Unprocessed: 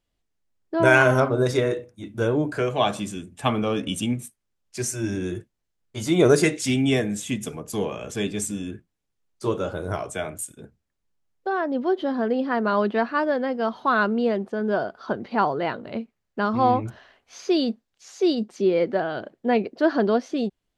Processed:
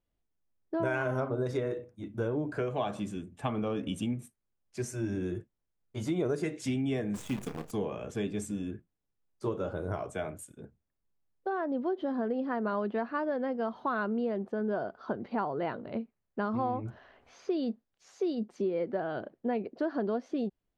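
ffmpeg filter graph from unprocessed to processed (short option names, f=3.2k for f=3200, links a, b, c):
-filter_complex "[0:a]asettb=1/sr,asplit=3[a][b][c];[a]atrim=end=7.144[d];[b]atrim=start=7.14:end=7.71,asetpts=PTS-STARTPTS,afade=t=in:d=0.004:c=qsin,afade=t=out:st=0.566:d=0.004:c=qsin,bandreject=f=600:w=5.8,acrusher=bits=6:dc=4:mix=0:aa=0.000001,asplit=2[e][f];[f]adelay=31,volume=-11dB[g];[e][g]amix=inputs=2:normalize=0,atrim=end_sample=25137[h];[c]atrim=start=7.706[i];[d][h]acrossfade=d=0.004:c1=hsin:c2=qsin[j];[j][i]acrossfade=d=0.004:c1=qsin:c2=hsin,asettb=1/sr,asplit=3[k][l][m];[k]atrim=end=16.604[n];[l]atrim=start=16.6:end=17.63,asetpts=PTS-STARTPTS,afade=t=in:d=0.004:c=qsin,afade=t=out:st=1.026:d=0.004:c=qsin,highshelf=f=5.3k:g=-6,acompressor=mode=upward:threshold=-42dB:ratio=2.5:attack=3.2:release=140:knee=2.83:detection=peak[o];[m]atrim=start=17.626[p];[n][o]acrossfade=d=0.004:c1=hsin:c2=qsin[q];[q][p]acrossfade=d=0.004:c1=qsin:c2=hsin,highshelf=f=2.3k:g=-11.5,acompressor=threshold=-24dB:ratio=5,volume=-4dB"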